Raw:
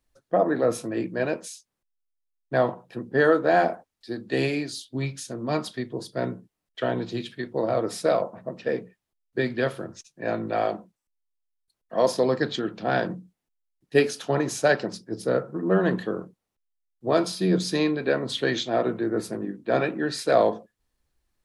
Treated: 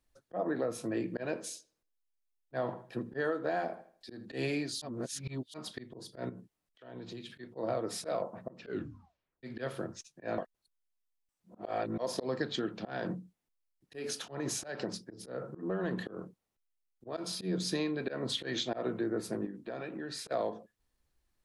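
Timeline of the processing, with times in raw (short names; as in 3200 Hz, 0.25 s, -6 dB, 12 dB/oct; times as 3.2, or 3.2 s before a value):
0.92–4.26 darkening echo 79 ms, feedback 34%, low-pass 4900 Hz, level -20.5 dB
4.82–5.54 reverse
6.29–7.3 compressor, threshold -38 dBFS
8.59 tape stop 0.84 s
10.38–11.98 reverse
12.86–17.17 compressor 4:1, threshold -25 dBFS
19.46–20.31 compressor, threshold -34 dBFS
whole clip: auto swell 0.19 s; compressor 10:1, threshold -26 dBFS; gain -3 dB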